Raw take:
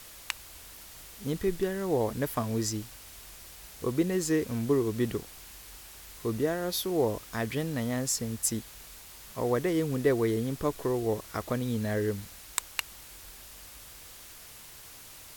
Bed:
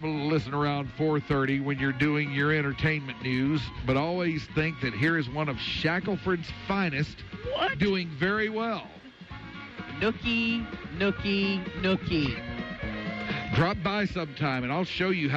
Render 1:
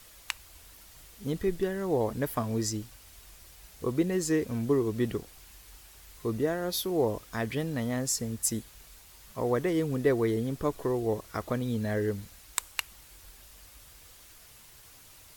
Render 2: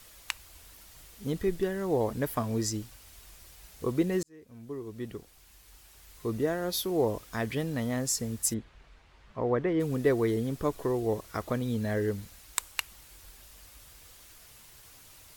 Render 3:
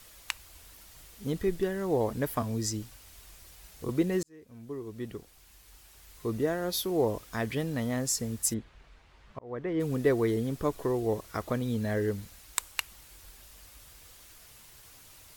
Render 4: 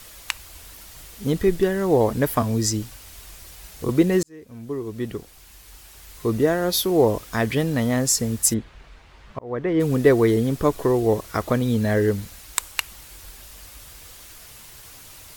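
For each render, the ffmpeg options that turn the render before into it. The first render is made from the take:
ffmpeg -i in.wav -af "afftdn=noise_reduction=6:noise_floor=-49" out.wav
ffmpeg -i in.wav -filter_complex "[0:a]asplit=3[link_01][link_02][link_03];[link_01]afade=type=out:start_time=8.53:duration=0.02[link_04];[link_02]lowpass=2400,afade=type=in:start_time=8.53:duration=0.02,afade=type=out:start_time=9.79:duration=0.02[link_05];[link_03]afade=type=in:start_time=9.79:duration=0.02[link_06];[link_04][link_05][link_06]amix=inputs=3:normalize=0,asplit=2[link_07][link_08];[link_07]atrim=end=4.23,asetpts=PTS-STARTPTS,afade=type=out:start_time=4.226:duration=0.004:curve=hsin[link_09];[link_08]atrim=start=4.23,asetpts=PTS-STARTPTS,afade=type=in:duration=2.31[link_10];[link_09][link_10]concat=n=2:v=0:a=1" out.wav
ffmpeg -i in.wav -filter_complex "[0:a]asettb=1/sr,asplit=3[link_01][link_02][link_03];[link_01]atrim=end=2.424[link_04];[link_02]atrim=start=2.42:end=3.89,asetpts=PTS-STARTPTS,afade=type=in:duration=0.004:curve=qsin,afade=type=out:start_time=1.466:duration=0.004:curve=qsin,acrossover=split=260|3000[link_05][link_06][link_07];[link_06]acompressor=threshold=-37dB:ratio=6:attack=3.2:release=140:knee=2.83:detection=peak[link_08];[link_05][link_08][link_07]amix=inputs=3:normalize=0[link_09];[link_03]atrim=start=3.886[link_10];[link_04][link_09]acrossfade=duration=0.004:curve1=hsin:curve2=qsin[link_11];[link_11][link_10]acrossfade=duration=0.004:curve1=qsin:curve2=hsin,asplit=2[link_12][link_13];[link_12]atrim=end=9.39,asetpts=PTS-STARTPTS,afade=type=out:start_time=9.386:duration=0.004:curve=hsin[link_14];[link_13]atrim=start=9.39,asetpts=PTS-STARTPTS,afade=type=in:duration=0.48[link_15];[link_14][link_15]concat=n=2:v=0:a=1" out.wav
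ffmpeg -i in.wav -af "volume=9.5dB,alimiter=limit=-1dB:level=0:latency=1" out.wav

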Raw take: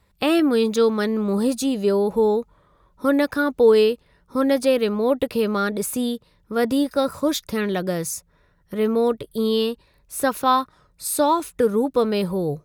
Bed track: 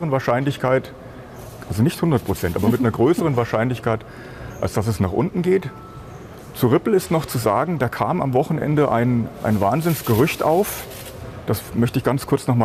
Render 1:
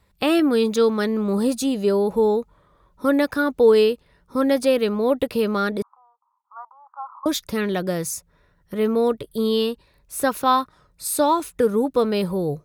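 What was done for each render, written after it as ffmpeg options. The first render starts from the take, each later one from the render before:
ffmpeg -i in.wav -filter_complex "[0:a]asettb=1/sr,asplit=3[link_01][link_02][link_03];[link_01]atrim=end=5.824[link_04];[link_02]atrim=start=5.82:end=7.26,asetpts=PTS-STARTPTS,afade=type=in:duration=0.004:curve=qsin,afade=type=out:start_time=1.436:duration=0.004:curve=qsin,asuperpass=centerf=1000:order=8:qfactor=2.3[link_05];[link_03]atrim=start=7.256[link_06];[link_04][link_05]acrossfade=duration=0.004:curve1=hsin:curve2=qsin[link_07];[link_07][link_06]acrossfade=duration=0.004:curve1=qsin:curve2=hsin" out.wav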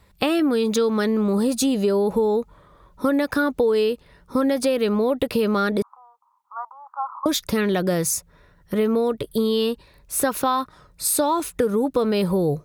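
ffmpeg -i in.wav -filter_complex "[0:a]asplit=2[link_01][link_02];[link_02]alimiter=limit=-17dB:level=0:latency=1:release=39,volume=0.5dB[link_03];[link_01][link_03]amix=inputs=2:normalize=0,acompressor=threshold=-17dB:ratio=6" out.wav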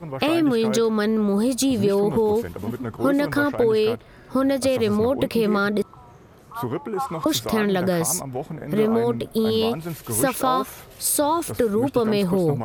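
ffmpeg -i in.wav -i bed.wav -filter_complex "[1:a]volume=-11.5dB[link_01];[0:a][link_01]amix=inputs=2:normalize=0" out.wav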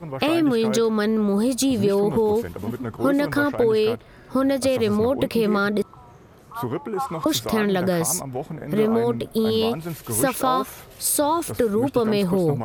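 ffmpeg -i in.wav -af anull out.wav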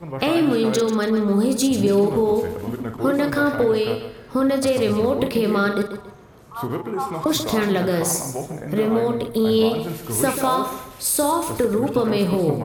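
ffmpeg -i in.wav -filter_complex "[0:a]asplit=2[link_01][link_02];[link_02]adelay=45,volume=-8dB[link_03];[link_01][link_03]amix=inputs=2:normalize=0,aecho=1:1:140|280|420|560:0.316|0.104|0.0344|0.0114" out.wav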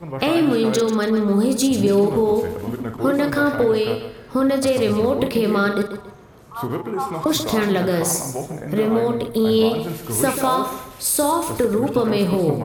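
ffmpeg -i in.wav -af "volume=1dB" out.wav

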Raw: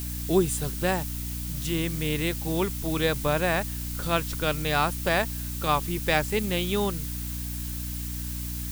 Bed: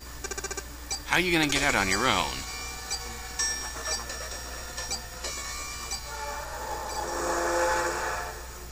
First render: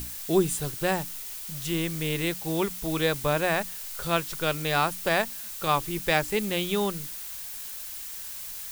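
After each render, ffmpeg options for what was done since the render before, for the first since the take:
ffmpeg -i in.wav -af "bandreject=frequency=60:width_type=h:width=6,bandreject=frequency=120:width_type=h:width=6,bandreject=frequency=180:width_type=h:width=6,bandreject=frequency=240:width_type=h:width=6,bandreject=frequency=300:width_type=h:width=6" out.wav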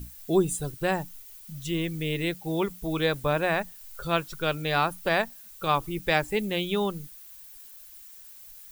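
ffmpeg -i in.wav -af "afftdn=noise_reduction=14:noise_floor=-38" out.wav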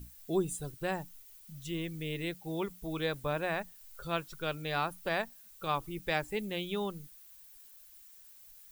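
ffmpeg -i in.wav -af "volume=-8dB" out.wav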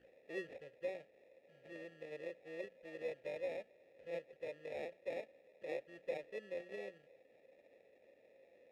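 ffmpeg -i in.wav -filter_complex "[0:a]acrusher=samples=29:mix=1:aa=0.000001,asplit=3[link_01][link_02][link_03];[link_01]bandpass=frequency=530:width_type=q:width=8,volume=0dB[link_04];[link_02]bandpass=frequency=1840:width_type=q:width=8,volume=-6dB[link_05];[link_03]bandpass=frequency=2480:width_type=q:width=8,volume=-9dB[link_06];[link_04][link_05][link_06]amix=inputs=3:normalize=0" out.wav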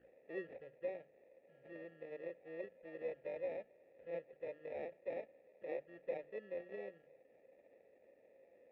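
ffmpeg -i in.wav -af "lowpass=1900,bandreject=frequency=50:width_type=h:width=6,bandreject=frequency=100:width_type=h:width=6,bandreject=frequency=150:width_type=h:width=6" out.wav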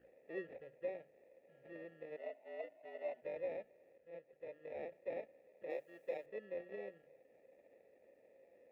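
ffmpeg -i in.wav -filter_complex "[0:a]asplit=3[link_01][link_02][link_03];[link_01]afade=type=out:start_time=2.16:duration=0.02[link_04];[link_02]afreqshift=100,afade=type=in:start_time=2.16:duration=0.02,afade=type=out:start_time=3.21:duration=0.02[link_05];[link_03]afade=type=in:start_time=3.21:duration=0.02[link_06];[link_04][link_05][link_06]amix=inputs=3:normalize=0,asettb=1/sr,asplit=3[link_07][link_08][link_09];[link_07]atrim=end=5.704[link_10];[link_08]atrim=start=5.7:end=6.26,asetpts=PTS-STARTPTS,afade=type=in:duration=0.004:curve=qsin,afade=type=out:start_time=0.556:duration=0.004:curve=qsin,bass=frequency=250:gain=-8,treble=frequency=4000:gain=12[link_11];[link_09]atrim=start=6.256[link_12];[link_10][link_11]acrossfade=duration=0.004:curve1=hsin:curve2=qsin[link_13];[link_13][link_12]acrossfade=duration=0.004:curve1=qsin:curve2=hsin,asplit=2[link_14][link_15];[link_14]atrim=end=3.98,asetpts=PTS-STARTPTS,afade=type=out:start_time=3.976:duration=0.004:curve=hsin:silence=0.237137[link_16];[link_15]atrim=start=3.98,asetpts=PTS-STARTPTS,afade=type=in:duration=0.99:silence=0.237137[link_17];[link_16][link_17]concat=n=2:v=0:a=1" out.wav

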